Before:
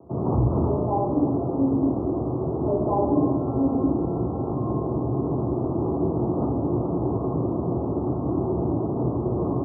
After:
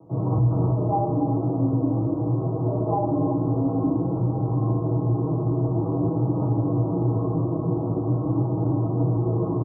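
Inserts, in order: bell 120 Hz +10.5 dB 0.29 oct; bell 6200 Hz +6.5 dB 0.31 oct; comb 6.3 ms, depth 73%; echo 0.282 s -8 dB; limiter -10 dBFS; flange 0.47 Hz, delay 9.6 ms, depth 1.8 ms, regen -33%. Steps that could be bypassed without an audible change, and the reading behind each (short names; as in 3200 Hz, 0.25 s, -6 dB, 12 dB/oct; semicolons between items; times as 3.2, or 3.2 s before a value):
bell 6200 Hz: input band ends at 1100 Hz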